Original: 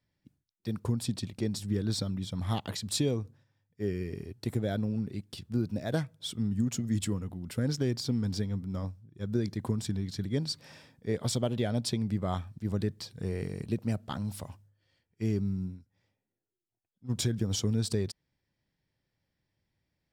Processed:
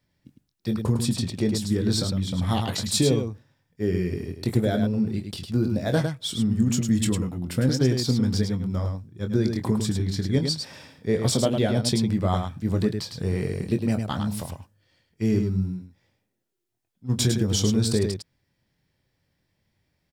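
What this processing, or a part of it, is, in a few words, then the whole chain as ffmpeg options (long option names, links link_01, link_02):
slapback doubling: -filter_complex "[0:a]asplit=3[link_01][link_02][link_03];[link_02]adelay=23,volume=-8dB[link_04];[link_03]adelay=105,volume=-6dB[link_05];[link_01][link_04][link_05]amix=inputs=3:normalize=0,volume=7dB"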